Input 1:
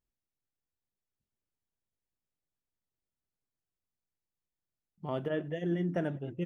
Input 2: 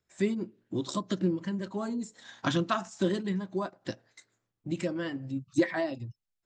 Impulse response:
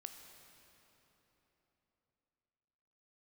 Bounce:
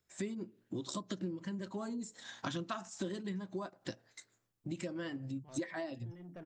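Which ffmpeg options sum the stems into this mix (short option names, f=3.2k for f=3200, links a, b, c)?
-filter_complex "[0:a]asoftclip=type=tanh:threshold=-29dB,adelay=400,volume=-12.5dB[a];[1:a]highshelf=f=6k:g=6,volume=-1dB,asplit=2[b][c];[c]apad=whole_len=302219[d];[a][d]sidechaincompress=threshold=-33dB:ratio=8:attack=8.2:release=882[e];[e][b]amix=inputs=2:normalize=0,acompressor=threshold=-39dB:ratio=3"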